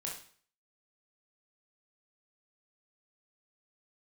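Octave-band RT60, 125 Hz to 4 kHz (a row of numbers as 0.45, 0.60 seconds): 0.50, 0.50, 0.45, 0.50, 0.50, 0.45 seconds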